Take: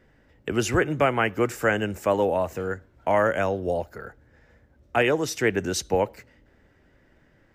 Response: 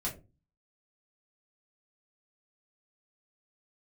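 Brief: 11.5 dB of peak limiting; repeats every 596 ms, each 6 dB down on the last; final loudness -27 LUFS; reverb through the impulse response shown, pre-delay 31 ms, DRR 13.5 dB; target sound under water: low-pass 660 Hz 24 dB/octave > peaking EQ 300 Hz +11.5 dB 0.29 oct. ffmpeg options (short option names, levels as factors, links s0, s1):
-filter_complex "[0:a]alimiter=limit=0.0891:level=0:latency=1,aecho=1:1:596|1192|1788|2384|2980|3576:0.501|0.251|0.125|0.0626|0.0313|0.0157,asplit=2[s0][s1];[1:a]atrim=start_sample=2205,adelay=31[s2];[s1][s2]afir=irnorm=-1:irlink=0,volume=0.158[s3];[s0][s3]amix=inputs=2:normalize=0,lowpass=f=660:w=0.5412,lowpass=f=660:w=1.3066,equalizer=f=300:t=o:w=0.29:g=11.5,volume=1.33"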